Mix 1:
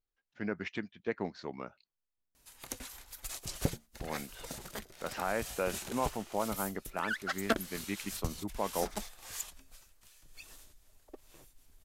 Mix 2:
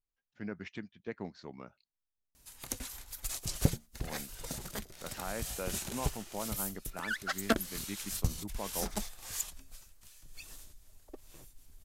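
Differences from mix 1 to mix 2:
speech -7.0 dB; master: add tone controls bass +6 dB, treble +4 dB

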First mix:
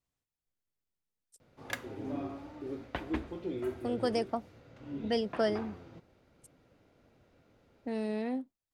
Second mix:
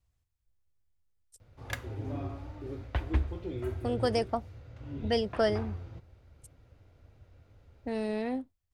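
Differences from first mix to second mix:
speech +3.5 dB; master: add resonant low shelf 130 Hz +13.5 dB, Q 1.5

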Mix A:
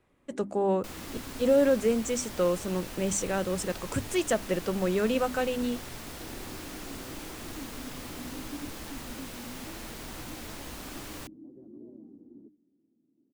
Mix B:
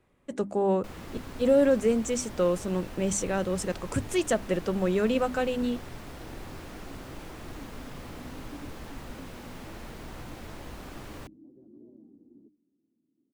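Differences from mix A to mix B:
first sound -6.0 dB; second sound: add high shelf 3300 Hz -11 dB; master: add low shelf 400 Hz +2.5 dB

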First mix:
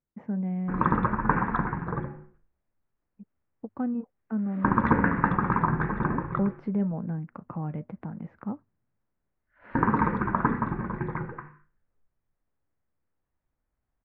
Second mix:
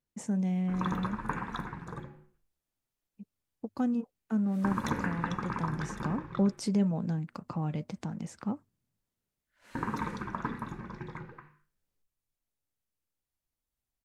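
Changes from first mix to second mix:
background -10.5 dB; master: remove LPF 1900 Hz 24 dB/oct

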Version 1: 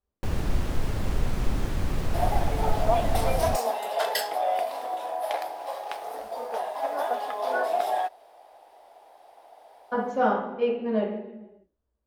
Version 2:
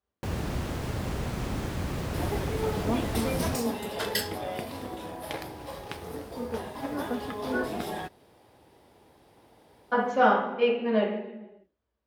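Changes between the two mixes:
speech: add bell 2600 Hz +8.5 dB 2.3 oct; second sound: remove resonant high-pass 690 Hz, resonance Q 5.3; master: add HPF 73 Hz 12 dB/oct

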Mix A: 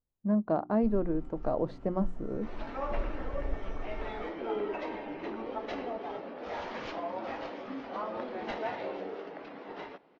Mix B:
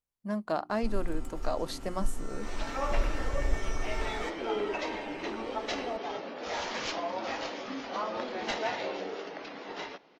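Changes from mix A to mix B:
speech: add tilt shelf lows -8 dB, about 1100 Hz; first sound +5.5 dB; master: remove tape spacing loss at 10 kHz 31 dB

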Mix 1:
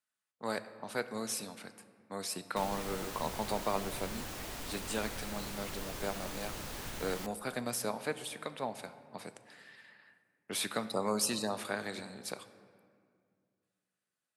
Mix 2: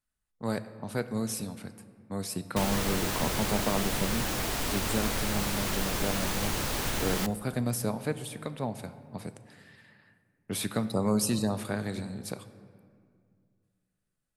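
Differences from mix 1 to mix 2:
speech: remove weighting filter A; background +11.5 dB

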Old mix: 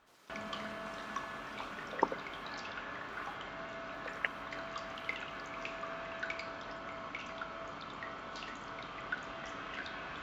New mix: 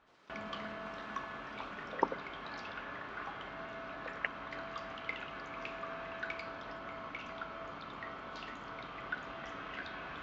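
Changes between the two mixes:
speech: add high shelf 7000 Hz -5.5 dB; master: add air absorption 110 m

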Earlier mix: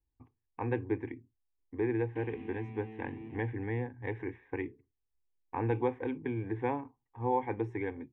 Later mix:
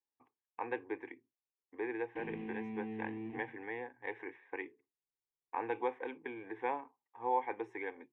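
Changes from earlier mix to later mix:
speech: add HPF 550 Hz 12 dB/oct; background: send +7.0 dB

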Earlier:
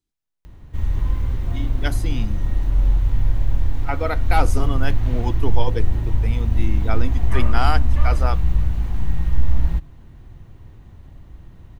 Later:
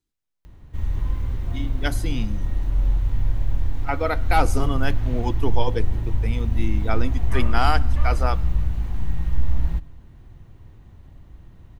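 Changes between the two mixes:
background -4.0 dB; reverb: on, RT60 0.55 s

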